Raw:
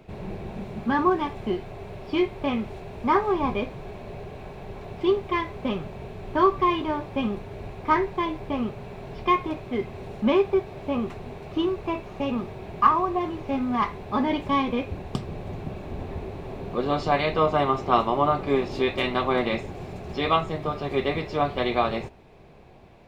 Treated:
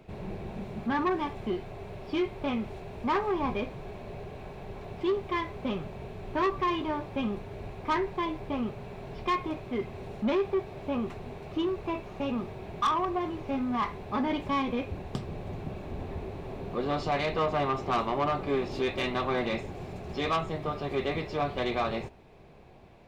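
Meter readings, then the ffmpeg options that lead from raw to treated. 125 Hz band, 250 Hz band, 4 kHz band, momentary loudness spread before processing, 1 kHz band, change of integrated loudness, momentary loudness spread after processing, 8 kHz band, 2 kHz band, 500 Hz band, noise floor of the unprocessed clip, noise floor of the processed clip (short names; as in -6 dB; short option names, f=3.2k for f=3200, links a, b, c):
-4.0 dB, -5.0 dB, -4.5 dB, 15 LU, -6.5 dB, -5.5 dB, 12 LU, n/a, -4.5 dB, -5.5 dB, -41 dBFS, -44 dBFS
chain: -af "asoftclip=type=tanh:threshold=-18.5dB,volume=-3dB"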